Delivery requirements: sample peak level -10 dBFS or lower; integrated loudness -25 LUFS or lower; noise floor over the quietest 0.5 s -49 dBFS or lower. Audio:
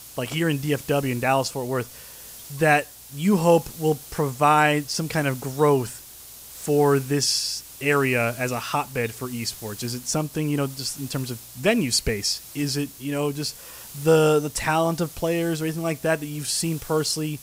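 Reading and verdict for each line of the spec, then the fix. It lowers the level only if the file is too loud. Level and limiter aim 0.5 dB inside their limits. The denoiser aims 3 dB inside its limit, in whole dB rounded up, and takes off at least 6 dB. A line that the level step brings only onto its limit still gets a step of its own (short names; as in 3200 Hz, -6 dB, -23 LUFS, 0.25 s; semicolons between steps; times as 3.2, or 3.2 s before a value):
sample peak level -6.0 dBFS: fail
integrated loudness -23.5 LUFS: fail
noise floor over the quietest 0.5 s -43 dBFS: fail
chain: denoiser 7 dB, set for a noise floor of -43 dBFS; gain -2 dB; limiter -10.5 dBFS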